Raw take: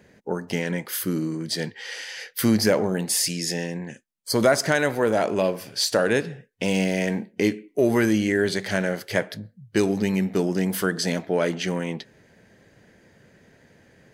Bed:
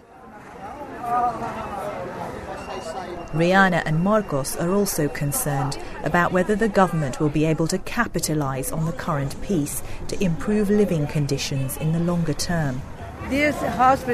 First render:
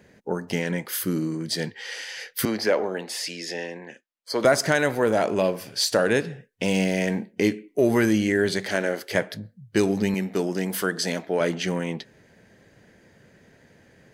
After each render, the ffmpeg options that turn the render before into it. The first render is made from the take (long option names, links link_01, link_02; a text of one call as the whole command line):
ffmpeg -i in.wav -filter_complex "[0:a]asettb=1/sr,asplit=3[link_01][link_02][link_03];[link_01]atrim=end=2.454[link_04];[link_02]atrim=start=2.45:end=4.45,asetpts=PTS-STARTPTS,afade=type=in:duration=0.004:curve=qsin,afade=type=out:start_time=1.996:duration=0.004:curve=qsin,acrossover=split=300 4800:gain=0.112 1 0.178[link_05][link_06][link_07];[link_05][link_06][link_07]amix=inputs=3:normalize=0[link_08];[link_03]atrim=start=4.446[link_09];[link_04][link_08]acrossfade=duration=0.004:curve1=hsin:curve2=qsin[link_10];[link_10][link_09]acrossfade=duration=0.004:curve1=qsin:curve2=hsin,asettb=1/sr,asplit=3[link_11][link_12][link_13];[link_11]atrim=end=8.664[link_14];[link_12]atrim=start=8.66:end=9.15,asetpts=PTS-STARTPTS,afade=type=in:duration=0.004:curve=qsin,afade=type=out:start_time=0.486:duration=0.004:curve=qsin,lowshelf=frequency=210:width_type=q:width=1.5:gain=-8.5[link_15];[link_13]atrim=start=9.146[link_16];[link_14][link_15]acrossfade=duration=0.004:curve1=hsin:curve2=qsin[link_17];[link_17][link_16]acrossfade=duration=0.004:curve1=qsin:curve2=hsin,asettb=1/sr,asplit=3[link_18][link_19][link_20];[link_18]atrim=end=10.144[link_21];[link_19]atrim=start=10.14:end=11.41,asetpts=PTS-STARTPTS,afade=type=in:duration=0.004:curve=qsin,afade=type=out:start_time=1.266:duration=0.004:curve=qsin,highpass=frequency=260:poles=1[link_22];[link_20]atrim=start=11.406[link_23];[link_21][link_22]acrossfade=duration=0.004:curve1=hsin:curve2=qsin[link_24];[link_24][link_23]acrossfade=duration=0.004:curve1=qsin:curve2=hsin" out.wav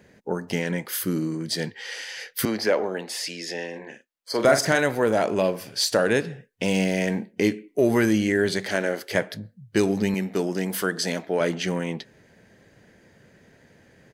ffmpeg -i in.wav -filter_complex "[0:a]asplit=3[link_01][link_02][link_03];[link_01]afade=type=out:start_time=3.72:duration=0.02[link_04];[link_02]asplit=2[link_05][link_06];[link_06]adelay=43,volume=-7dB[link_07];[link_05][link_07]amix=inputs=2:normalize=0,afade=type=in:start_time=3.72:duration=0.02,afade=type=out:start_time=4.79:duration=0.02[link_08];[link_03]afade=type=in:start_time=4.79:duration=0.02[link_09];[link_04][link_08][link_09]amix=inputs=3:normalize=0" out.wav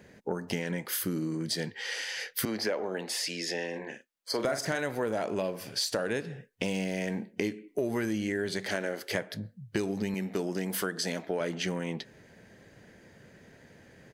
ffmpeg -i in.wav -af "acompressor=threshold=-29dB:ratio=4" out.wav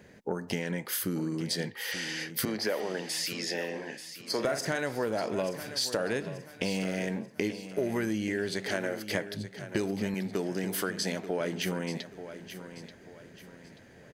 ffmpeg -i in.wav -af "aecho=1:1:884|1768|2652|3536:0.251|0.0929|0.0344|0.0127" out.wav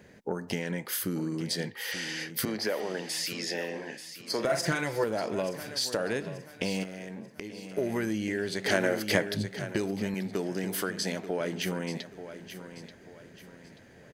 ffmpeg -i in.wav -filter_complex "[0:a]asettb=1/sr,asplit=3[link_01][link_02][link_03];[link_01]atrim=end=4.494[link_04];[link_02]atrim=start=4.49:end=5.04,asetpts=PTS-STARTPTS,afade=type=in:duration=0.004:curve=qsin,afade=type=out:start_time=0.546:duration=0.004:curve=qsin,aecho=1:1:5.9:0.99,atrim=end_sample=24255[link_05];[link_03]atrim=start=5.036[link_06];[link_04][link_05]acrossfade=duration=0.004:curve1=hsin:curve2=qsin[link_07];[link_07][link_06]acrossfade=duration=0.004:curve1=qsin:curve2=hsin,asettb=1/sr,asplit=3[link_08][link_09][link_10];[link_08]atrim=end=6.834[link_11];[link_09]atrim=start=6.83:end=7.73,asetpts=PTS-STARTPTS,afade=type=in:duration=0.004:curve=qsin,afade=type=out:start_time=0.896:duration=0.004:curve=qsin,acompressor=threshold=-36dB:ratio=6:attack=3.2:release=140:knee=1:detection=peak[link_12];[link_10]atrim=start=7.726[link_13];[link_11][link_12]acrossfade=duration=0.004:curve1=hsin:curve2=qsin[link_14];[link_14][link_13]acrossfade=duration=0.004:curve1=qsin:curve2=hsin,asplit=3[link_15][link_16][link_17];[link_15]afade=type=out:start_time=8.64:duration=0.02[link_18];[link_16]acontrast=49,afade=type=in:start_time=8.64:duration=0.02,afade=type=out:start_time=9.71:duration=0.02[link_19];[link_17]afade=type=in:start_time=9.71:duration=0.02[link_20];[link_18][link_19][link_20]amix=inputs=3:normalize=0" out.wav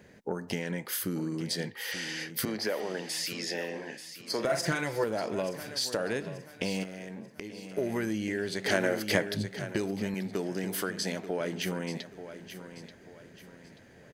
ffmpeg -i in.wav -af "volume=-1dB" out.wav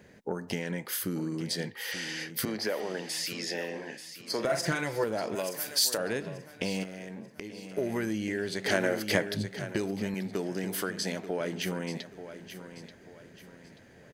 ffmpeg -i in.wav -filter_complex "[0:a]asettb=1/sr,asplit=3[link_01][link_02][link_03];[link_01]atrim=end=5.354[link_04];[link_02]atrim=start=5.35:end=5.98,asetpts=PTS-STARTPTS,afade=type=in:duration=0.004:curve=qsin,afade=type=out:start_time=0.626:duration=0.004:curve=qsin,aemphasis=mode=production:type=bsi[link_05];[link_03]atrim=start=5.976[link_06];[link_04][link_05]acrossfade=duration=0.004:curve1=hsin:curve2=qsin[link_07];[link_07][link_06]acrossfade=duration=0.004:curve1=qsin:curve2=hsin" out.wav